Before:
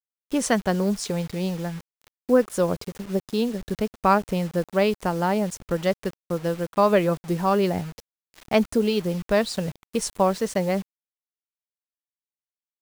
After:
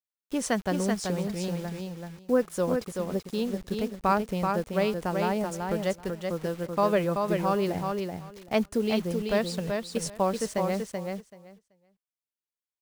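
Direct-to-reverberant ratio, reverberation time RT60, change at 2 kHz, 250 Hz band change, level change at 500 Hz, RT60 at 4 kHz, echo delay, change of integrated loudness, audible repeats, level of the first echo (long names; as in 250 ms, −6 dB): no reverb audible, no reverb audible, −4.0 dB, −4.0 dB, −4.0 dB, no reverb audible, 382 ms, −4.5 dB, 2, −4.5 dB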